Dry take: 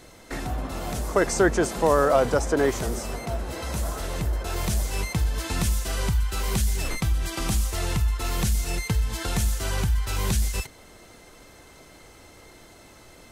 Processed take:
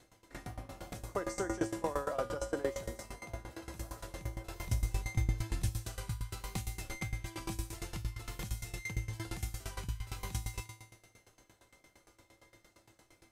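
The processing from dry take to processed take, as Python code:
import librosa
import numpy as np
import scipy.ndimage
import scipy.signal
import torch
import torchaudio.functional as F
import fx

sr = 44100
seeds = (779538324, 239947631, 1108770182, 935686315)

y = fx.low_shelf(x, sr, hz=110.0, db=12.0, at=(4.67, 5.69))
y = fx.comb_fb(y, sr, f0_hz=110.0, decay_s=1.3, harmonics='odd', damping=0.0, mix_pct=90)
y = fx.tremolo_decay(y, sr, direction='decaying', hz=8.7, depth_db=19)
y = y * librosa.db_to_amplitude(8.0)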